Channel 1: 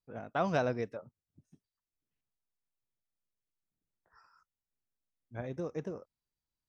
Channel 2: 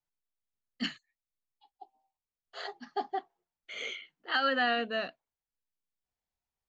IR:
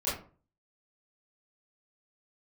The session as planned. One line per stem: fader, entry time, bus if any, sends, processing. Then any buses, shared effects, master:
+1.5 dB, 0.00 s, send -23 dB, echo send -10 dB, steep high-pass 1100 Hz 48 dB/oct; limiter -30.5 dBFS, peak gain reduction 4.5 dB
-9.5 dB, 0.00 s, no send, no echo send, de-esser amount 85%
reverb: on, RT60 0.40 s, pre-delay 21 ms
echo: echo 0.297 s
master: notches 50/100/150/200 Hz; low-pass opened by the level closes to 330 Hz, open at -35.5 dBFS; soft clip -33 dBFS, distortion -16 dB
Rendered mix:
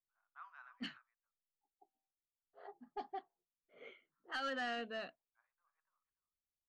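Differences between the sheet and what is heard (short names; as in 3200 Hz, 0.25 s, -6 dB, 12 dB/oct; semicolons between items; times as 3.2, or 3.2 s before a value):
stem 1 +1.5 dB -> -8.5 dB; master: missing notches 50/100/150/200 Hz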